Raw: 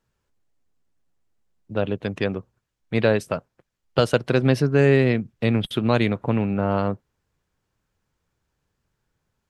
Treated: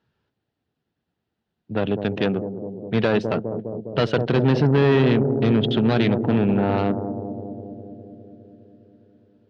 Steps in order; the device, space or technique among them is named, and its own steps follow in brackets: analogue delay pedal into a guitar amplifier (bucket-brigade echo 204 ms, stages 1024, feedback 74%, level -10.5 dB; valve stage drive 19 dB, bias 0.45; cabinet simulation 99–4100 Hz, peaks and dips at 550 Hz -5 dB, 1.1 kHz -7 dB, 2.2 kHz -6 dB); trim +7.5 dB

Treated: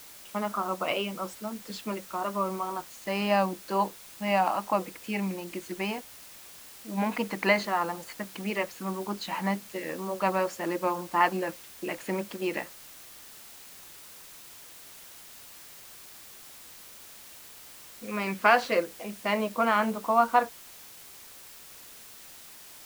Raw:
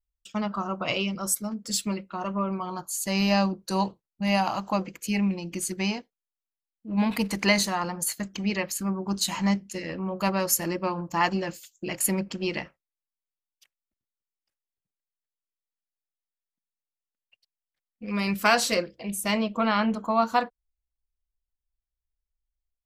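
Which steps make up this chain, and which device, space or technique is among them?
wax cylinder (band-pass 310–2200 Hz; wow and flutter; white noise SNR 17 dB); trim +1.5 dB

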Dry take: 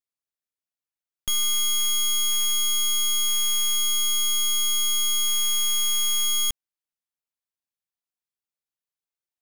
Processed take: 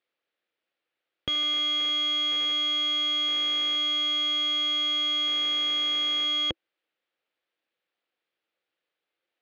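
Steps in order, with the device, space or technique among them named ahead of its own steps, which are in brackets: overdrive pedal into a guitar cabinet (overdrive pedal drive 16 dB, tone 5.8 kHz, clips at -22 dBFS; cabinet simulation 84–3600 Hz, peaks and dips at 330 Hz +9 dB, 510 Hz +9 dB, 1 kHz -6 dB); trim +4.5 dB

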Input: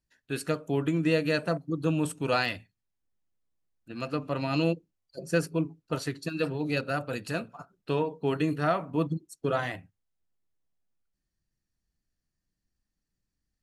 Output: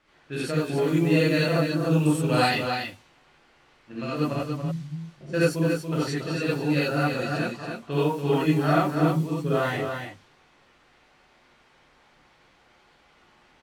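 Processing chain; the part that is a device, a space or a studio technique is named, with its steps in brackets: 4.33–5.21 s: inverse Chebyshev low-pass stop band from 910 Hz, stop band 80 dB; cassette deck with a dynamic noise filter (white noise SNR 23 dB; level-controlled noise filter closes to 2 kHz, open at -25 dBFS); delay 284 ms -6 dB; gated-style reverb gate 110 ms rising, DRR -7.5 dB; trim -4 dB

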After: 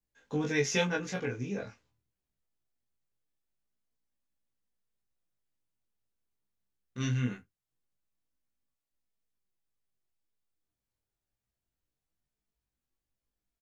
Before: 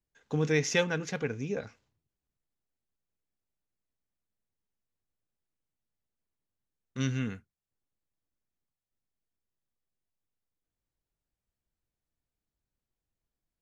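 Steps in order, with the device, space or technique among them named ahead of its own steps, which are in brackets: double-tracked vocal (doubling 16 ms -2 dB; chorus 0.23 Hz, delay 19.5 ms, depth 6.6 ms)

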